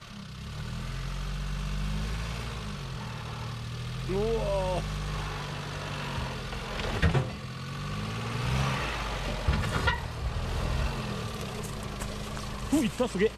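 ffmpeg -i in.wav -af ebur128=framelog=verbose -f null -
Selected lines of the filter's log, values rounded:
Integrated loudness:
  I:         -32.5 LUFS
  Threshold: -42.6 LUFS
Loudness range:
  LRA:         4.9 LU
  Threshold: -52.4 LUFS
  LRA low:   -35.7 LUFS
  LRA high:  -30.9 LUFS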